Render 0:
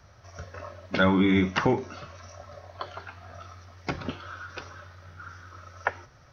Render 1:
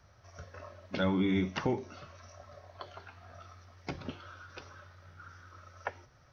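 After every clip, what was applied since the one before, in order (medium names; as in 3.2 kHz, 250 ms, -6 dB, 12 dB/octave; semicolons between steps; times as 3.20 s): dynamic bell 1.4 kHz, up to -6 dB, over -42 dBFS, Q 1.2; trim -7 dB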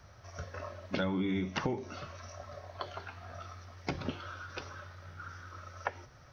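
compression 6:1, threshold -35 dBFS, peak gain reduction 10 dB; trim +5.5 dB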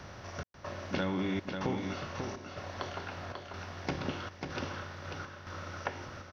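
spectral levelling over time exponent 0.6; trance gate "xxxx..xxx" 140 bpm -60 dB; on a send: delay 542 ms -5.5 dB; on the sum: trim -2.5 dB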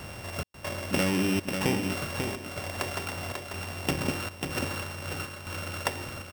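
sorted samples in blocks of 16 samples; trim +6.5 dB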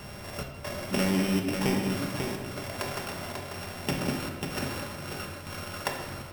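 simulated room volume 960 m³, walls mixed, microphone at 1.3 m; trim -2.5 dB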